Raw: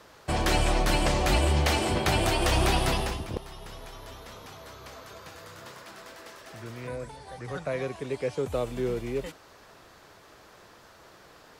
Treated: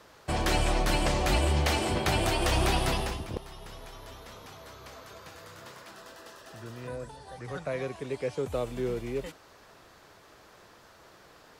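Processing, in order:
0:05.93–0:07.36: notch filter 2,200 Hz, Q 5.4
level −2 dB

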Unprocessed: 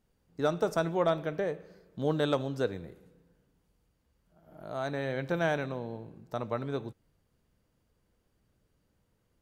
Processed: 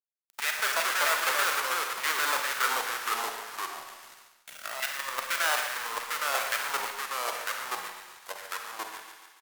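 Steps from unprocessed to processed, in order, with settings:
each half-wave held at its own peak
high-pass filter 190 Hz 24 dB per octave
high-shelf EQ 7,300 Hz +5.5 dB
mains-hum notches 50/100/150/200/250/300/350 Hz
output level in coarse steps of 14 dB
in parallel at −1 dB: brickwall limiter −22.5 dBFS, peak gain reduction 10.5 dB
on the sum: auto-filter high-pass saw down 2.5 Hz 980–2,100 Hz
bit reduction 8 bits
on a send: repeating echo 113 ms, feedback 41%, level −10.5 dB
on the sum: four-comb reverb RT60 0.61 s, combs from 31 ms, DRR 5.5 dB
delay with pitch and tempo change per echo 152 ms, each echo −2 semitones, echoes 2
one half of a high-frequency compander encoder only

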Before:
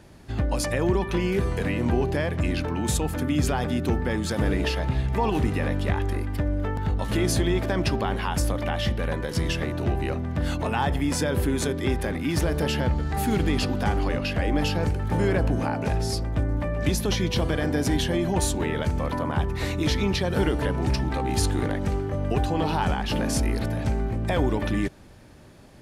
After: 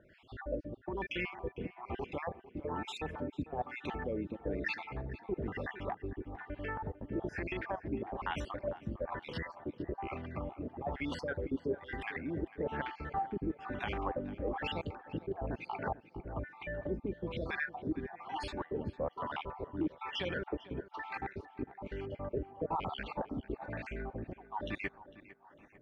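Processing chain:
time-frequency cells dropped at random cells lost 50%
low-shelf EQ 360 Hz −11 dB
compressor whose output falls as the input rises −30 dBFS, ratio −1
auto-filter low-pass sine 1.1 Hz 300–2,900 Hz
on a send: tape delay 450 ms, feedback 50%, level −15.5 dB, low-pass 2,700 Hz
on the sum: level −6.5 dB

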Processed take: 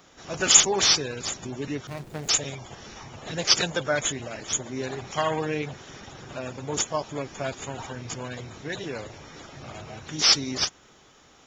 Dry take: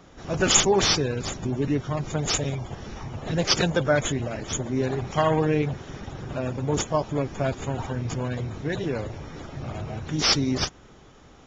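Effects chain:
0:01.87–0:02.29: running median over 41 samples
spectral tilt +2.5 dB per octave
level −2.5 dB

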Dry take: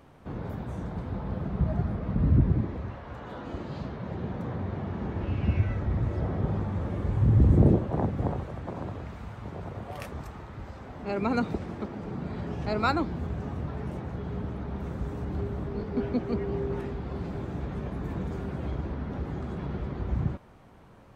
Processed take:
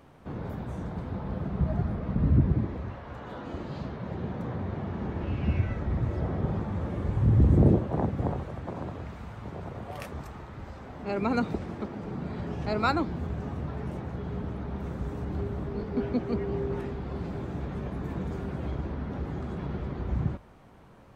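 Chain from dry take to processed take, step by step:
mains-hum notches 50/100 Hz

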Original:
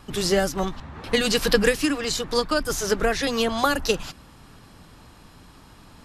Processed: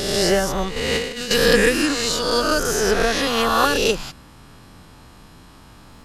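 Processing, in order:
peak hold with a rise ahead of every peak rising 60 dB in 1.52 s
0:00.76–0:01.31: compressor whose output falls as the input rises −23 dBFS, ratio −0.5

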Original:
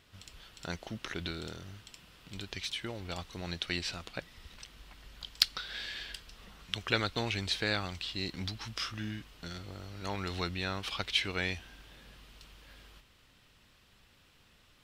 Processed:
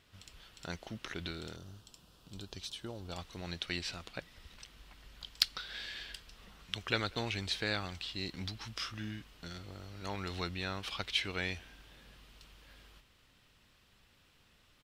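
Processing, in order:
0:01.56–0:03.13: parametric band 2,100 Hz −15 dB 0.7 octaves
far-end echo of a speakerphone 190 ms, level −26 dB
level −3 dB

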